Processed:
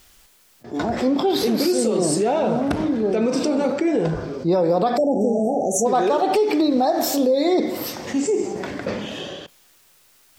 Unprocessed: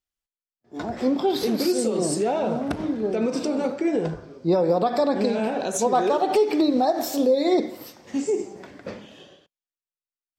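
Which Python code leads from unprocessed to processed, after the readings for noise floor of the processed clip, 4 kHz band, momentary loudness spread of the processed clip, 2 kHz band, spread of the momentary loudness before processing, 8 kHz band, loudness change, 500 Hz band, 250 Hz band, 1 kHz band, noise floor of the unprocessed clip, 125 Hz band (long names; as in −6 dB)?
−56 dBFS, +4.5 dB, 10 LU, +4.0 dB, 14 LU, +5.0 dB, +2.5 dB, +3.0 dB, +3.5 dB, +2.5 dB, below −85 dBFS, +4.5 dB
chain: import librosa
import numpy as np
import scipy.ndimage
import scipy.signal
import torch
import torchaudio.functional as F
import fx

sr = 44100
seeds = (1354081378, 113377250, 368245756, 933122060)

y = fx.spec_erase(x, sr, start_s=4.97, length_s=0.89, low_hz=850.0, high_hz=5500.0)
y = fx.env_flatten(y, sr, amount_pct=50)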